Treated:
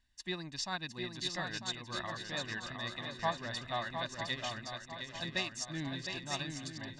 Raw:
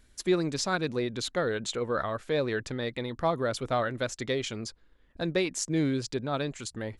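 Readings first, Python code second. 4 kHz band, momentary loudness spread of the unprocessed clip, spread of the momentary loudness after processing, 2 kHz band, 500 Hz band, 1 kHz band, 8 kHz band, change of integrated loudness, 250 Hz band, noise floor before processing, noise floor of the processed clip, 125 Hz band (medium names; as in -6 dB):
-1.0 dB, 6 LU, 5 LU, -3.5 dB, -14.5 dB, -5.5 dB, -7.5 dB, -8.0 dB, -12.5 dB, -62 dBFS, -53 dBFS, -9.5 dB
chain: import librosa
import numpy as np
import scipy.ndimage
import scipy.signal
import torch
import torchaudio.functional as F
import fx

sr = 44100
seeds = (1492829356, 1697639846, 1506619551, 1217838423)

p1 = scipy.signal.sosfilt(scipy.signal.butter(2, 4700.0, 'lowpass', fs=sr, output='sos'), x)
p2 = fx.tilt_shelf(p1, sr, db=-6.0, hz=1400.0)
p3 = p2 + 0.79 * np.pad(p2, (int(1.1 * sr / 1000.0), 0))[:len(p2)]
p4 = p3 + fx.echo_swing(p3, sr, ms=948, ratio=3, feedback_pct=51, wet_db=-4.5, dry=0)
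p5 = fx.upward_expand(p4, sr, threshold_db=-42.0, expansion=1.5)
y = p5 * librosa.db_to_amplitude(-5.5)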